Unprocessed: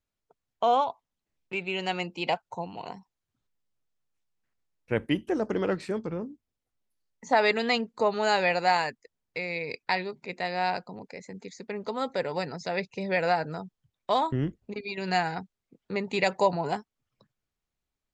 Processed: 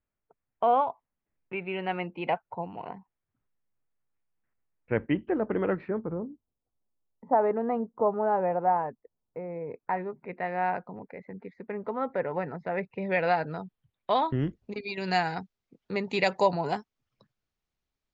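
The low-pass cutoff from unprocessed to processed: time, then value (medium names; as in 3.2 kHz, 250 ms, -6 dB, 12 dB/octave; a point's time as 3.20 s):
low-pass 24 dB/octave
5.79 s 2.3 kHz
6.21 s 1.1 kHz
9.59 s 1.1 kHz
10.38 s 2 kHz
12.87 s 2 kHz
13.28 s 3.7 kHz
14.11 s 3.7 kHz
14.62 s 6.4 kHz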